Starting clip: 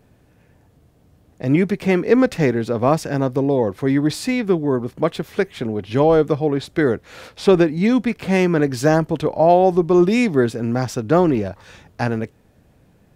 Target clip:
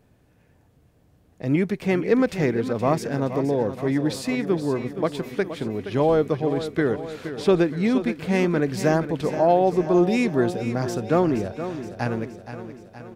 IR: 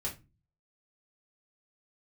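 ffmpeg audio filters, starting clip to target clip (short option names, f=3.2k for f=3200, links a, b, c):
-af "aecho=1:1:471|942|1413|1884|2355|2826|3297:0.282|0.163|0.0948|0.055|0.0319|0.0185|0.0107,volume=-5dB"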